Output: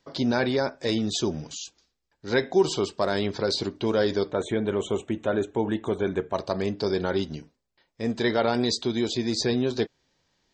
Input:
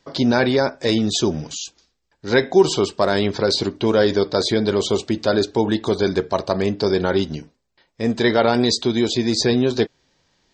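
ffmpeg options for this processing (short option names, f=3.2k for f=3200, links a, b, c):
-filter_complex "[0:a]asplit=3[a][b][c];[a]afade=t=out:st=4.3:d=0.02[d];[b]asuperstop=centerf=4800:order=4:qfactor=1.2,afade=t=in:st=4.3:d=0.02,afade=t=out:st=6.33:d=0.02[e];[c]afade=t=in:st=6.33:d=0.02[f];[d][e][f]amix=inputs=3:normalize=0,volume=-7dB"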